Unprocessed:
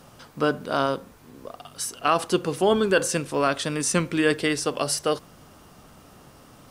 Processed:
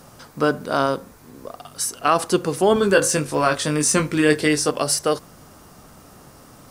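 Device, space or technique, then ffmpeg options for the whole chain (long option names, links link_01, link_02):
exciter from parts: -filter_complex "[0:a]asettb=1/sr,asplit=3[link_01][link_02][link_03];[link_01]atrim=end=2.744[link_04];[link_02]atrim=start=2.74:end=4.71,asetpts=PTS-STARTPTS,afade=type=in:duration=0.004:curve=qsin,afade=type=out:start_time=1.966:duration=0.004:curve=qsin,asplit=2[link_05][link_06];[link_06]adelay=20,volume=-5.5dB[link_07];[link_05][link_07]amix=inputs=2:normalize=0,atrim=end_sample=86877[link_08];[link_03]atrim=start=4.706[link_09];[link_04][link_08]acrossfade=duration=0.004:curve1=hsin:curve2=qsin[link_10];[link_10][link_09]acrossfade=duration=0.004:curve1=qsin:curve2=hsin,asplit=2[link_11][link_12];[link_12]highpass=frequency=2800:width=0.5412,highpass=frequency=2800:width=1.3066,asoftclip=type=tanh:threshold=-21dB,volume=-6dB[link_13];[link_11][link_13]amix=inputs=2:normalize=0,volume=3.5dB"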